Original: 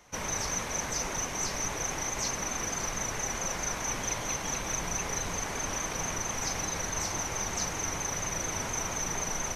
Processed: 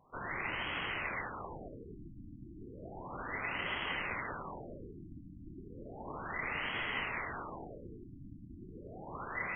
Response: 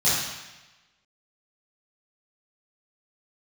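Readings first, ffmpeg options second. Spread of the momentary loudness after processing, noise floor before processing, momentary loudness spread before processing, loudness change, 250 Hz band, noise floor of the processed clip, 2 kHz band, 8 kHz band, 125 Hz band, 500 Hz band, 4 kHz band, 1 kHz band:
16 LU, −36 dBFS, 1 LU, −8.0 dB, −7.0 dB, −52 dBFS, −1.5 dB, below −40 dB, −9.0 dB, −8.0 dB, −8.0 dB, −6.5 dB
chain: -filter_complex "[0:a]aeval=exprs='val(0)*sin(2*PI*2000*n/s)':channel_layout=same,flanger=delay=7.7:depth=4.1:regen=-86:speed=0.9:shape=sinusoidal,asplit=2[link_01][link_02];[1:a]atrim=start_sample=2205,asetrate=34839,aresample=44100,adelay=137[link_03];[link_02][link_03]afir=irnorm=-1:irlink=0,volume=-31dB[link_04];[link_01][link_04]amix=inputs=2:normalize=0,afftfilt=real='re*lt(b*sr/1024,320*pow(3400/320,0.5+0.5*sin(2*PI*0.33*pts/sr)))':imag='im*lt(b*sr/1024,320*pow(3400/320,0.5+0.5*sin(2*PI*0.33*pts/sr)))':win_size=1024:overlap=0.75,volume=6dB"

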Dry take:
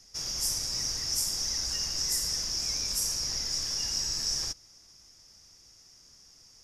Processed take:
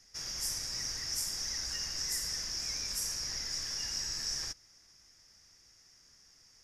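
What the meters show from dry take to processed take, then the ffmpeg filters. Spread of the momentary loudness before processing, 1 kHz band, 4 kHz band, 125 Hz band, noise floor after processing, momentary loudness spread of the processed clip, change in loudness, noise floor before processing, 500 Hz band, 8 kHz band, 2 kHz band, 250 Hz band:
2 LU, −4.0 dB, −5.5 dB, −6.0 dB, −63 dBFS, 2 LU, −5.5 dB, −57 dBFS, −5.5 dB, −5.5 dB, +0.5 dB, −6.0 dB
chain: -af "equalizer=frequency=1800:width=1.6:gain=8,volume=-6dB"

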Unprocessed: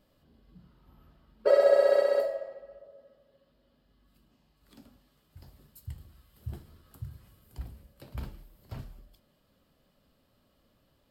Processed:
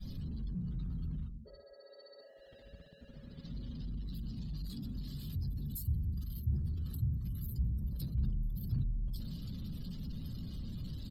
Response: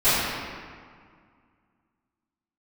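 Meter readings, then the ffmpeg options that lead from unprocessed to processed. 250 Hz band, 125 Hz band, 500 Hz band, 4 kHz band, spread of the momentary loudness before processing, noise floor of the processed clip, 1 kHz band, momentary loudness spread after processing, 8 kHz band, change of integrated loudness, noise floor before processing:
+9.5 dB, +10.0 dB, −31.5 dB, −3.5 dB, 22 LU, −58 dBFS, below −25 dB, 19 LU, can't be measured, −14.5 dB, −70 dBFS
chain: -filter_complex "[0:a]aeval=exprs='val(0)+0.5*0.015*sgn(val(0))':channel_layout=same,adynamicequalizer=threshold=0.0112:dfrequency=300:dqfactor=0.84:tfrequency=300:tqfactor=0.84:attack=5:release=100:ratio=0.375:range=3:mode=cutabove:tftype=bell,areverse,acompressor=threshold=-33dB:ratio=16,areverse,asplit=2[link_01][link_02];[link_02]adelay=178,lowpass=frequency=3300:poles=1,volume=-13dB,asplit=2[link_03][link_04];[link_04]adelay=178,lowpass=frequency=3300:poles=1,volume=0.43,asplit=2[link_05][link_06];[link_06]adelay=178,lowpass=frequency=3300:poles=1,volume=0.43,asplit=2[link_07][link_08];[link_08]adelay=178,lowpass=frequency=3300:poles=1,volume=0.43[link_09];[link_01][link_03][link_05][link_07][link_09]amix=inputs=5:normalize=0,afftdn=noise_reduction=35:noise_floor=-47,firequalizer=gain_entry='entry(170,0);entry(310,-14);entry(600,-29);entry(2500,-19);entry(4000,-4)':delay=0.05:min_phase=1,volume=5.5dB"

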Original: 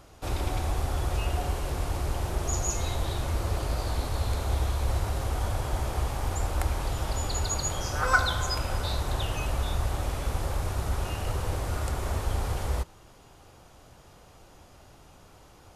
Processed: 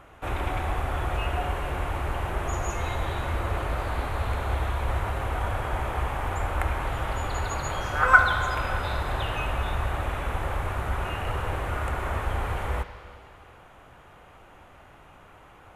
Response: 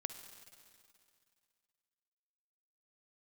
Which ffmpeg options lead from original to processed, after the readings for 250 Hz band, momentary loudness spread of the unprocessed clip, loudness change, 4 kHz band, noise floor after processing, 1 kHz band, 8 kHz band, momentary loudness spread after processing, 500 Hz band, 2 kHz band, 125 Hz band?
+0.5 dB, 3 LU, +2.0 dB, −2.5 dB, −51 dBFS, +6.0 dB, −9.0 dB, 4 LU, +2.5 dB, +7.5 dB, −0.5 dB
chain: -filter_complex "[0:a]asplit=2[link_01][link_02];[link_02]equalizer=frequency=1900:width=0.35:gain=14[link_03];[1:a]atrim=start_sample=2205,lowpass=3300[link_04];[link_03][link_04]afir=irnorm=-1:irlink=0,volume=0.5dB[link_05];[link_01][link_05]amix=inputs=2:normalize=0,volume=-6dB"

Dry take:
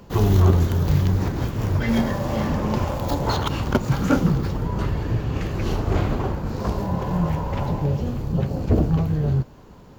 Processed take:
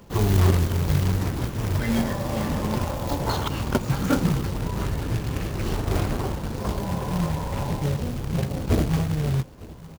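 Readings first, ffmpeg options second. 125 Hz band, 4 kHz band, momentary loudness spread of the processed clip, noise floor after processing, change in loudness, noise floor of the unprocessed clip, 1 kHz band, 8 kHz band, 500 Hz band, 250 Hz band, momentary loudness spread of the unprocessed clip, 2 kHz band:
−3.0 dB, +0.5 dB, 6 LU, −41 dBFS, −2.5 dB, −45 dBFS, −2.5 dB, +4.5 dB, −3.0 dB, −3.0 dB, 6 LU, −1.0 dB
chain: -af "aecho=1:1:908:0.0944,acrusher=bits=3:mode=log:mix=0:aa=0.000001,volume=-3dB"

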